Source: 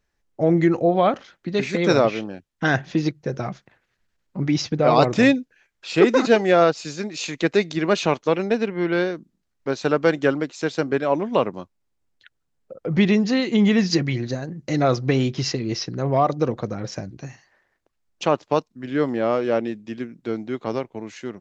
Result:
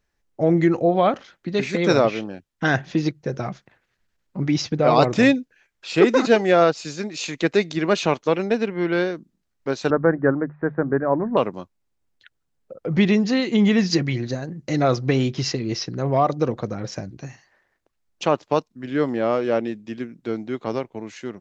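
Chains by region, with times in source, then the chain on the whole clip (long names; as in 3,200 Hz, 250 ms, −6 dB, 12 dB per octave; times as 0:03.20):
0:09.90–0:11.37: Chebyshev low-pass filter 1,800 Hz, order 5 + low-shelf EQ 150 Hz +10 dB + mains-hum notches 50/100/150/200 Hz
whole clip: no processing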